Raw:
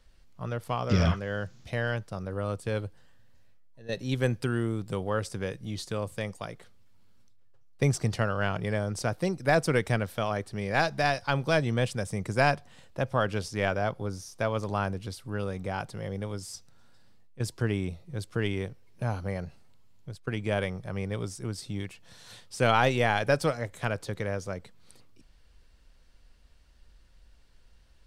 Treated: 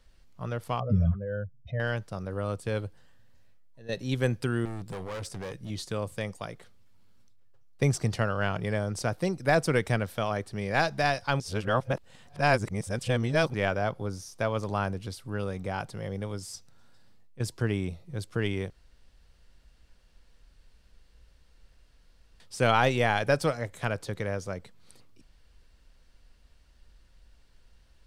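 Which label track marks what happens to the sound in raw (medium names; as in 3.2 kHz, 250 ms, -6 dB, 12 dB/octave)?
0.800000	1.800000	spectral contrast enhancement exponent 2.2
4.650000	5.700000	overload inside the chain gain 33.5 dB
11.400000	13.540000	reverse
18.700000	22.400000	room tone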